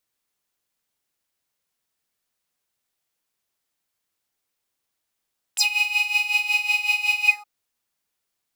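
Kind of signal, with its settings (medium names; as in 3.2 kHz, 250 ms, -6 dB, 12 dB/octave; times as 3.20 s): synth patch with tremolo G#5, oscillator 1 triangle, interval +19 st, oscillator 2 level -17 dB, sub -20 dB, noise -29 dB, filter highpass, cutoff 1.2 kHz, Q 10, filter envelope 3 oct, filter decay 0.07 s, attack 15 ms, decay 0.12 s, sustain -8 dB, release 0.17 s, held 1.70 s, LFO 5.4 Hz, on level 10.5 dB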